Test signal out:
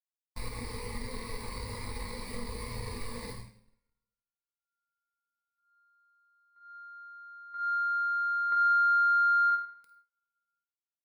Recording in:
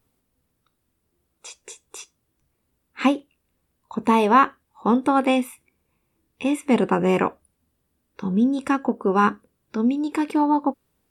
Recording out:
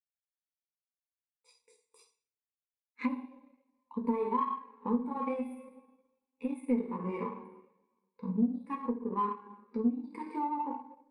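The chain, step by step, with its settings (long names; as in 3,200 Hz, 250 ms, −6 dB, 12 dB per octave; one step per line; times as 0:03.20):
EQ curve with evenly spaced ripples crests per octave 0.92, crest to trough 12 dB
flutter between parallel walls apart 8.8 metres, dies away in 0.38 s
coupled-rooms reverb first 0.76 s, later 2.5 s, from −18 dB, DRR −1.5 dB
power curve on the samples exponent 1.4
downward compressor 4 to 1, threshold −33 dBFS
every bin expanded away from the loudest bin 1.5 to 1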